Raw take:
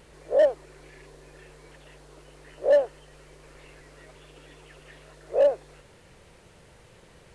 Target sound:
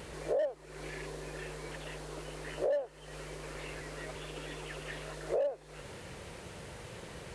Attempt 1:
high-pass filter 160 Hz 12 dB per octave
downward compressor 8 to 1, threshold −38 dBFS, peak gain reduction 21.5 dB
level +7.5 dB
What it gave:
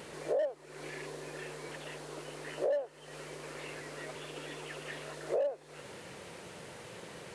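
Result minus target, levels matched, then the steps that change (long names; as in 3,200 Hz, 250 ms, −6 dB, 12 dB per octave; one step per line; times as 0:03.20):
125 Hz band −4.0 dB
change: high-pass filter 47 Hz 12 dB per octave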